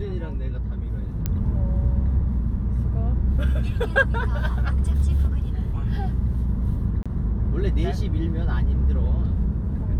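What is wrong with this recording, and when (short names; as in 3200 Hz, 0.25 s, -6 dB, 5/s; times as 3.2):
1.26 pop -11 dBFS
7.03–7.06 gap 26 ms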